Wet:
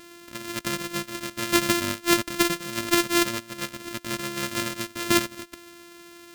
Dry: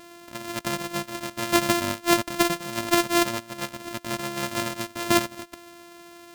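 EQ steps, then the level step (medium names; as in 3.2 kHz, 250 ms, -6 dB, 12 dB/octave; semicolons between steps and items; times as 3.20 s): peaking EQ 140 Hz -2.5 dB 1.7 oct; peaking EQ 770 Hz -13.5 dB 0.55 oct; +1.5 dB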